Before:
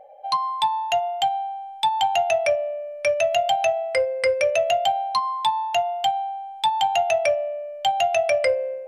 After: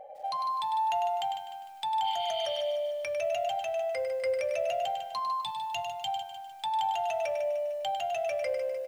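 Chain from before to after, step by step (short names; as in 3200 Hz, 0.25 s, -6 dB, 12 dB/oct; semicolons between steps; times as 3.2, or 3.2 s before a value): 2.07–2.58 spectral repair 2000–4800 Hz before; 5.41–6.08 band shelf 730 Hz -11.5 dB 3 oct; limiter -21.5 dBFS, peak gain reduction 11.5 dB; compressor 1.5:1, threshold -38 dBFS, peak gain reduction 5 dB; echo 0.1 s -8 dB; lo-fi delay 0.151 s, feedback 55%, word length 9-bit, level -9.5 dB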